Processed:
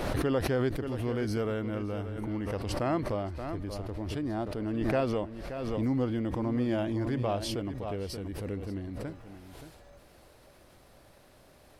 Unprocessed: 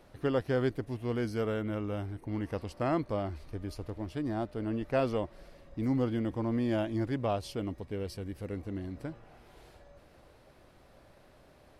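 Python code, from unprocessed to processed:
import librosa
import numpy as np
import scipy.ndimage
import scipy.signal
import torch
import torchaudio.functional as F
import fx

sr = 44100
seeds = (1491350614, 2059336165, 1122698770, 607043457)

y = fx.high_shelf(x, sr, hz=5000.0, db=fx.steps((0.0, -2.0), (9.06, 10.0)))
y = y + 10.0 ** (-11.5 / 20.0) * np.pad(y, (int(577 * sr / 1000.0), 0))[:len(y)]
y = fx.pre_swell(y, sr, db_per_s=27.0)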